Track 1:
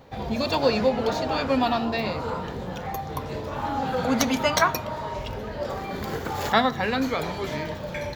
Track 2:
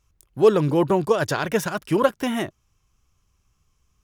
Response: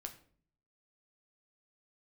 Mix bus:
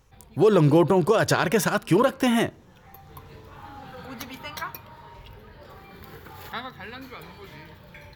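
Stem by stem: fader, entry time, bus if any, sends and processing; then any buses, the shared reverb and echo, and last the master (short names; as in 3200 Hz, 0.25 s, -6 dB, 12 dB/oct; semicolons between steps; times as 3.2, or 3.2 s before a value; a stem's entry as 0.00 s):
-10.5 dB, 0.00 s, no send, fifteen-band EQ 250 Hz -7 dB, 630 Hz -11 dB, 6300 Hz -8 dB, 16000 Hz +8 dB; auto duck -10 dB, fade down 0.30 s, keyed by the second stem
+3.0 dB, 0.00 s, send -13 dB, dry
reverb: on, RT60 0.50 s, pre-delay 7 ms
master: limiter -10 dBFS, peak gain reduction 9 dB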